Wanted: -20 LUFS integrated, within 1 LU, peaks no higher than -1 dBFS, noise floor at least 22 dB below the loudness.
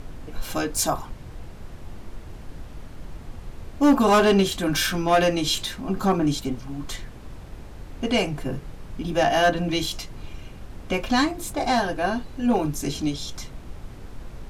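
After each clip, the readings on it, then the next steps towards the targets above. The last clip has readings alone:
clipped 0.3%; flat tops at -11.5 dBFS; noise floor -41 dBFS; noise floor target -46 dBFS; loudness -23.5 LUFS; peak -11.5 dBFS; loudness target -20.0 LUFS
-> clip repair -11.5 dBFS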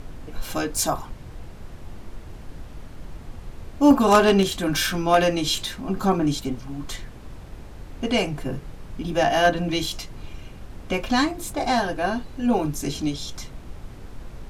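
clipped 0.0%; noise floor -41 dBFS; noise floor target -45 dBFS
-> noise print and reduce 6 dB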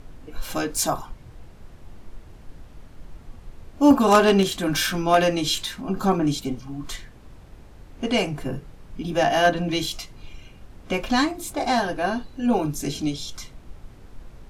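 noise floor -46 dBFS; loudness -23.0 LUFS; peak -2.5 dBFS; loudness target -20.0 LUFS
-> gain +3 dB; limiter -1 dBFS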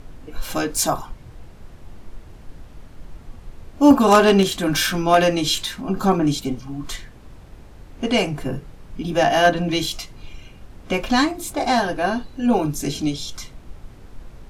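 loudness -20.0 LUFS; peak -1.0 dBFS; noise floor -43 dBFS

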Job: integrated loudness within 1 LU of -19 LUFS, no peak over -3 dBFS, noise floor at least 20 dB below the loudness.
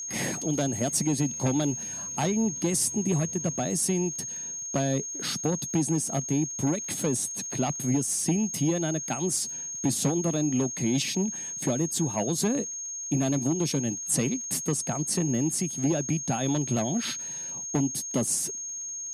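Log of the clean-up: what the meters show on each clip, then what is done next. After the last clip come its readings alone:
ticks 46/s; steady tone 6500 Hz; tone level -33 dBFS; loudness -27.5 LUFS; peak -12.0 dBFS; loudness target -19.0 LUFS
-> de-click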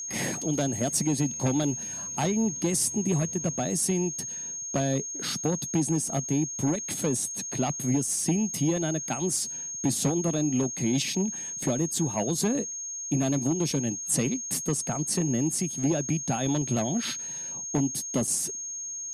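ticks 0.052/s; steady tone 6500 Hz; tone level -33 dBFS
-> notch 6500 Hz, Q 30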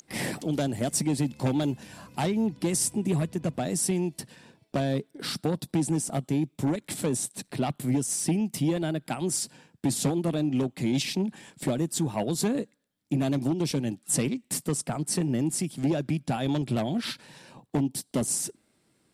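steady tone none; loudness -28.5 LUFS; peak -13.0 dBFS; loudness target -19.0 LUFS
-> gain +9.5 dB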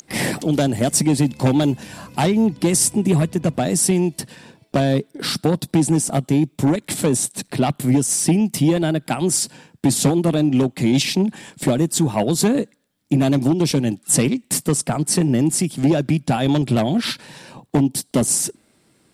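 loudness -19.0 LUFS; peak -3.5 dBFS; noise floor -60 dBFS

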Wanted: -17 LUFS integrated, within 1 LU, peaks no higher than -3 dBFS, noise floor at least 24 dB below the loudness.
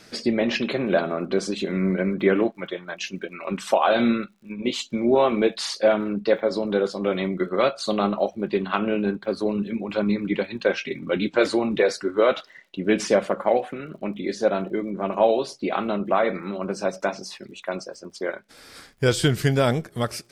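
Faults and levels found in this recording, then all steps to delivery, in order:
ticks 47/s; loudness -24.0 LUFS; peak -7.5 dBFS; loudness target -17.0 LUFS
-> de-click; gain +7 dB; limiter -3 dBFS

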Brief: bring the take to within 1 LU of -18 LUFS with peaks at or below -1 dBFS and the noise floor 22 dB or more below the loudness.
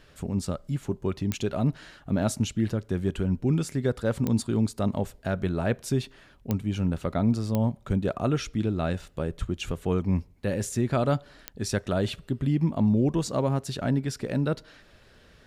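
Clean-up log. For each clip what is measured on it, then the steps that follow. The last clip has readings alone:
clicks 5; loudness -28.0 LUFS; peak -11.5 dBFS; loudness target -18.0 LUFS
-> de-click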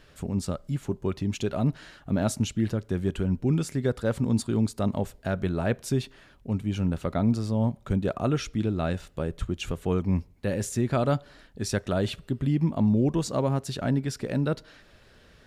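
clicks 0; loudness -28.0 LUFS; peak -11.5 dBFS; loudness target -18.0 LUFS
-> gain +10 dB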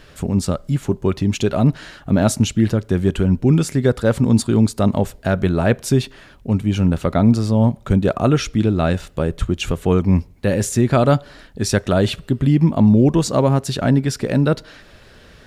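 loudness -18.0 LUFS; peak -1.5 dBFS; noise floor -46 dBFS

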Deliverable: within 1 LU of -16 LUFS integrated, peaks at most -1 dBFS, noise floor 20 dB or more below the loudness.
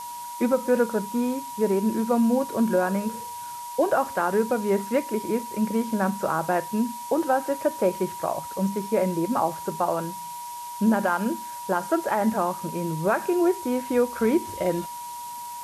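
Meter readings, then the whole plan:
steady tone 960 Hz; tone level -34 dBFS; noise floor -36 dBFS; noise floor target -45 dBFS; loudness -25.0 LUFS; peak -10.5 dBFS; loudness target -16.0 LUFS
-> notch 960 Hz, Q 30; denoiser 9 dB, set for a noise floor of -36 dBFS; gain +9 dB

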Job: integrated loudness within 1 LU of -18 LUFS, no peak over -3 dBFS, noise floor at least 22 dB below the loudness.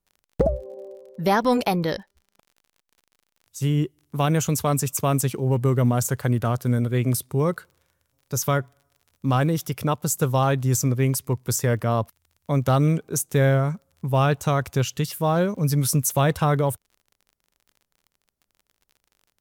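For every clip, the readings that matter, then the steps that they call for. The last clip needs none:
ticks 30/s; loudness -23.0 LUFS; peak -9.0 dBFS; loudness target -18.0 LUFS
-> de-click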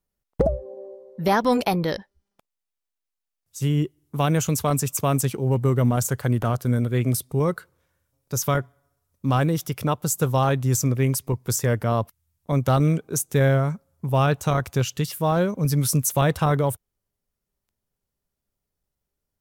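ticks 0.26/s; loudness -23.0 LUFS; peak -8.5 dBFS; loudness target -18.0 LUFS
-> gain +5 dB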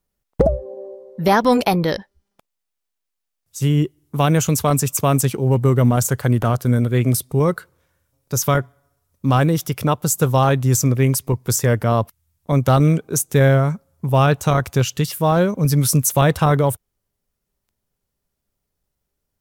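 loudness -18.0 LUFS; peak -3.5 dBFS; noise floor -79 dBFS

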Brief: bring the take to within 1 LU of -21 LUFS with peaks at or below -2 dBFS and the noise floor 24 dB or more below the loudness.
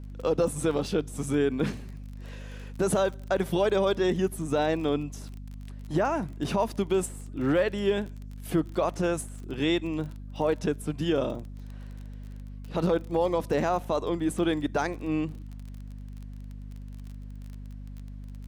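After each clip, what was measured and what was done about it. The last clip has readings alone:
ticks 30/s; hum 50 Hz; harmonics up to 250 Hz; hum level -38 dBFS; loudness -28.0 LUFS; peak -14.5 dBFS; loudness target -21.0 LUFS
-> de-click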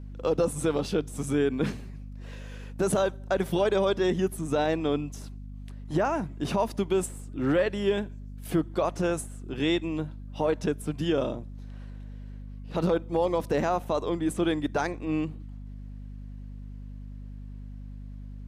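ticks 0/s; hum 50 Hz; harmonics up to 250 Hz; hum level -38 dBFS
-> notches 50/100/150/200/250 Hz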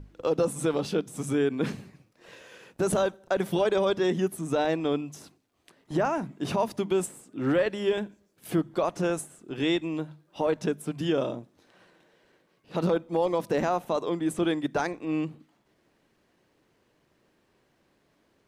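hum none; loudness -28.5 LUFS; peak -14.5 dBFS; loudness target -21.0 LUFS
-> gain +7.5 dB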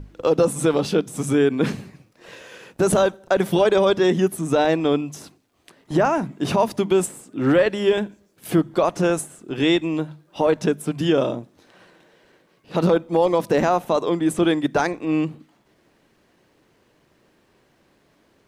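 loudness -21.0 LUFS; peak -7.0 dBFS; noise floor -62 dBFS

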